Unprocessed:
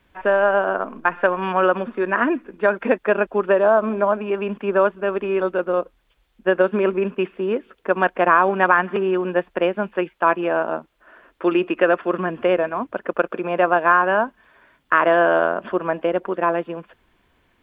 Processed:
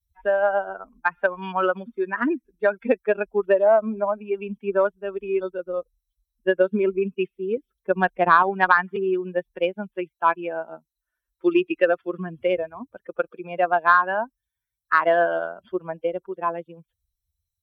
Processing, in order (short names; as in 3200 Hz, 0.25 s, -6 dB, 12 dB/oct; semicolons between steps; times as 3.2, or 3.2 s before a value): per-bin expansion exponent 2; 7.57–8.43 low shelf 340 Hz +9.5 dB; added harmonics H 3 -24 dB, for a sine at -4.5 dBFS; gain +3 dB